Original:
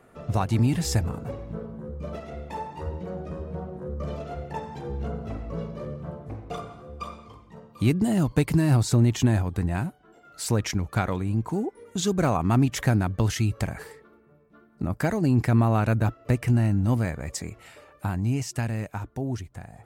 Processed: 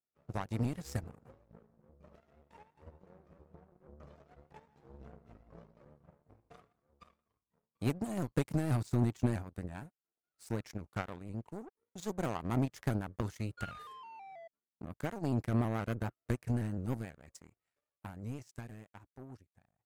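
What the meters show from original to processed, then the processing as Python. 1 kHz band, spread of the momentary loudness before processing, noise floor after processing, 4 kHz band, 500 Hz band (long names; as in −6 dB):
−12.5 dB, 15 LU, below −85 dBFS, −17.0 dB, −11.5 dB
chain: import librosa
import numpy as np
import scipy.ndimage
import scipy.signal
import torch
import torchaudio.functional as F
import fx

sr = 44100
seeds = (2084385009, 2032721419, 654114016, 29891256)

y = fx.peak_eq(x, sr, hz=3100.0, db=-4.0, octaves=0.68)
y = fx.spec_paint(y, sr, seeds[0], shape='fall', start_s=13.57, length_s=0.91, low_hz=640.0, high_hz=1500.0, level_db=-28.0)
y = fx.power_curve(y, sr, exponent=2.0)
y = fx.vibrato_shape(y, sr, shape='saw_up', rate_hz=6.2, depth_cents=100.0)
y = F.gain(torch.from_numpy(y), -6.5).numpy()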